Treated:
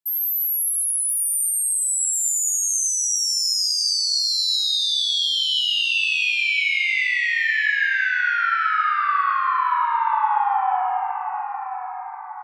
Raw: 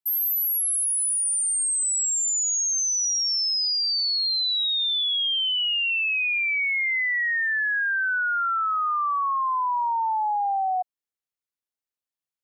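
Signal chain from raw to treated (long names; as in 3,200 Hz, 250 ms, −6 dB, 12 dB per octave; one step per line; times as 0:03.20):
repeating echo 1,033 ms, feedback 44%, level −9.5 dB
convolution reverb RT60 3.2 s, pre-delay 38 ms, DRR 0 dB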